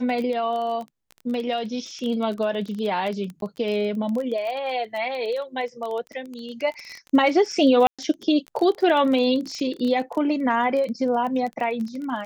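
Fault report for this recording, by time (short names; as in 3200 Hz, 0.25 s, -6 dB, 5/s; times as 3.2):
crackle 21/s -28 dBFS
3.41–3.42 gap 12 ms
7.87–7.99 gap 0.116 s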